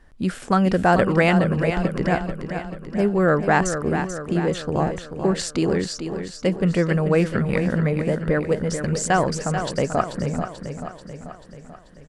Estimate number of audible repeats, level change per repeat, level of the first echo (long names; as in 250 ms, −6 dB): 6, −5.0 dB, −8.5 dB